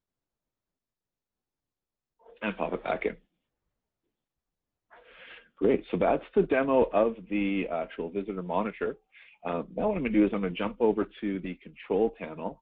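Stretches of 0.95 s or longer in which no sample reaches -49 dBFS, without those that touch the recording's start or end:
3.17–4.92 s

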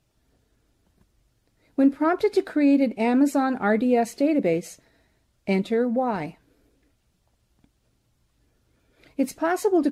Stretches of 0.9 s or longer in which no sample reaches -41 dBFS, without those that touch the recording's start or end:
6.32–9.04 s

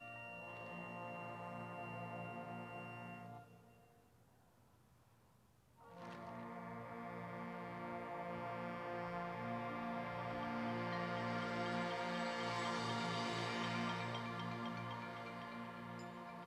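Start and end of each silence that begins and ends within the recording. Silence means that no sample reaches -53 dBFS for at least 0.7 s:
3.54–5.82 s

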